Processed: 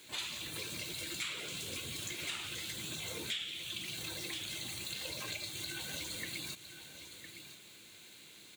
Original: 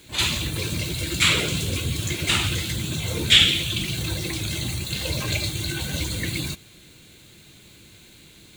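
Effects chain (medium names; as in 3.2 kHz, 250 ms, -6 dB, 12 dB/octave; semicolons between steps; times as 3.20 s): high-pass 540 Hz 6 dB/octave; on a send: delay 1008 ms -17.5 dB; on the sum: compression 6:1, threshold -34 dBFS, peak gain reduction 22 dB; trim -4.5 dB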